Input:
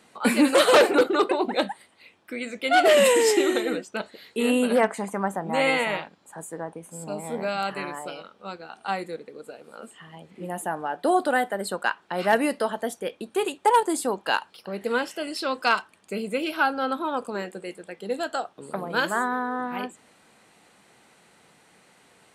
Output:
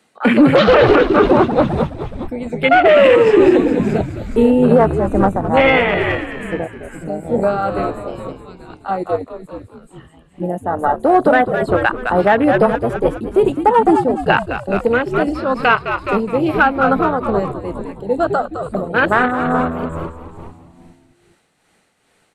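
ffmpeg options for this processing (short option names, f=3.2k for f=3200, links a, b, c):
-filter_complex "[0:a]bandreject=f=990:w=12,afwtdn=0.0501,asplit=2[a][b];[b]asoftclip=type=hard:threshold=-16dB,volume=-5dB[c];[a][c]amix=inputs=2:normalize=0,asplit=8[d][e][f][g][h][i][j][k];[e]adelay=209,afreqshift=-85,volume=-8dB[l];[f]adelay=418,afreqshift=-170,volume=-12.6dB[m];[g]adelay=627,afreqshift=-255,volume=-17.2dB[n];[h]adelay=836,afreqshift=-340,volume=-21.7dB[o];[i]adelay=1045,afreqshift=-425,volume=-26.3dB[p];[j]adelay=1254,afreqshift=-510,volume=-30.9dB[q];[k]adelay=1463,afreqshift=-595,volume=-35.5dB[r];[d][l][m][n][o][p][q][r]amix=inputs=8:normalize=0,acrossover=split=120|4700[s][t][u];[u]acompressor=threshold=-57dB:ratio=12[v];[s][t][v]amix=inputs=3:normalize=0,tremolo=f=2.3:d=0.48,alimiter=level_in=11.5dB:limit=-1dB:release=50:level=0:latency=1,volume=-1dB"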